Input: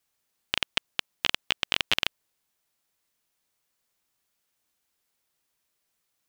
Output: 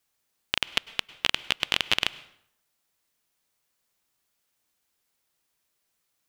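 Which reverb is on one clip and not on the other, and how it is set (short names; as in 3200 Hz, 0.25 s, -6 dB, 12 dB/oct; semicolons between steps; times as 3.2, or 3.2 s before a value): plate-style reverb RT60 0.7 s, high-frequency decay 0.75×, pre-delay 90 ms, DRR 18 dB; gain +1 dB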